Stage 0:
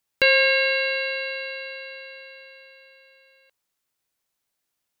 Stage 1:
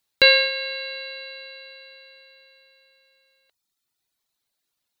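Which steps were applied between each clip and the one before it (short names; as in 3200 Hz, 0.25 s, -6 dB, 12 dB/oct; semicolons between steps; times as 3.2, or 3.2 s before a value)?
reverb removal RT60 1.2 s; bell 4000 Hz +8 dB 0.35 oct; gain +2 dB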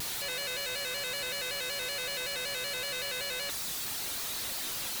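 infinite clipping; shaped vibrato square 5.3 Hz, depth 100 cents; gain -7.5 dB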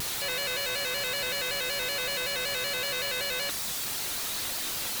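bit-crush 6-bit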